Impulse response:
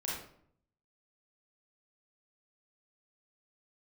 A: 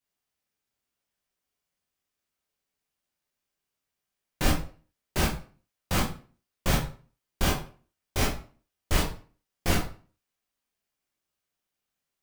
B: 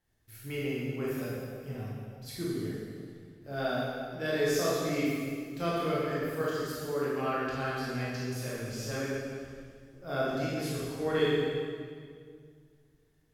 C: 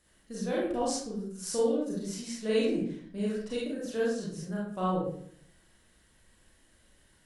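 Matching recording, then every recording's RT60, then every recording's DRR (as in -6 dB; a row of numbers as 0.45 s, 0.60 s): C; 0.40 s, 2.1 s, 0.60 s; -4.0 dB, -8.0 dB, -6.0 dB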